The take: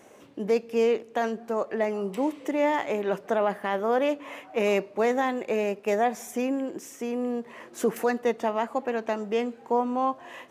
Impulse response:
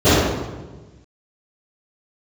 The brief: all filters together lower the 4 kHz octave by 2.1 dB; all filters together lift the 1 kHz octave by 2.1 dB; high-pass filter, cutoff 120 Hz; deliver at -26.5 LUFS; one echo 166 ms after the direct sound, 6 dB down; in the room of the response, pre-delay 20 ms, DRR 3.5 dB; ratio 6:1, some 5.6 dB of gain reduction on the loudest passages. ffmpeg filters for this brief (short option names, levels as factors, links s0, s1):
-filter_complex "[0:a]highpass=120,equalizer=f=1000:t=o:g=3,equalizer=f=4000:t=o:g=-3.5,acompressor=threshold=0.0631:ratio=6,aecho=1:1:166:0.501,asplit=2[s0][s1];[1:a]atrim=start_sample=2205,adelay=20[s2];[s1][s2]afir=irnorm=-1:irlink=0,volume=0.0224[s3];[s0][s3]amix=inputs=2:normalize=0,volume=0.841"